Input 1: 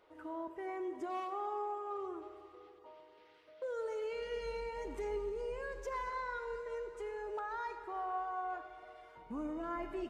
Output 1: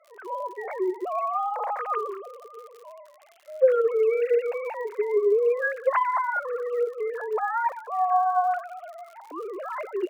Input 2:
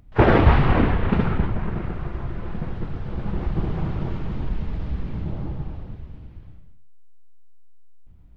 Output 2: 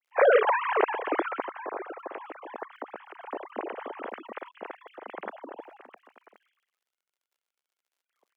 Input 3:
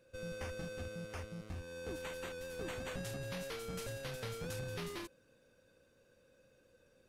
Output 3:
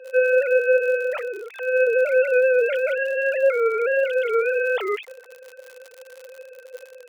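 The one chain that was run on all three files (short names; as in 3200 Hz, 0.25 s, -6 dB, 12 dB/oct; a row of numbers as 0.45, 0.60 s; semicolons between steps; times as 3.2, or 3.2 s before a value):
sine-wave speech; crackle 75/s -55 dBFS; HPF 390 Hz 24 dB/oct; normalise peaks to -9 dBFS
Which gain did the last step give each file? +15.5, -7.5, +23.5 dB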